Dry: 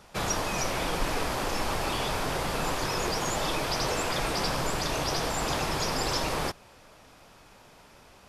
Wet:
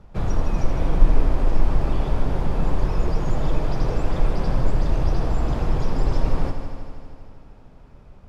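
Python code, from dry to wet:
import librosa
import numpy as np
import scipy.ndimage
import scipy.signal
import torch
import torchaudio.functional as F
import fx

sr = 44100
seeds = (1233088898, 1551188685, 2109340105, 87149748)

p1 = fx.tilt_eq(x, sr, slope=-4.5)
p2 = p1 + fx.echo_heads(p1, sr, ms=79, heads='first and second', feedback_pct=72, wet_db=-12.5, dry=0)
y = F.gain(torch.from_numpy(p2), -4.5).numpy()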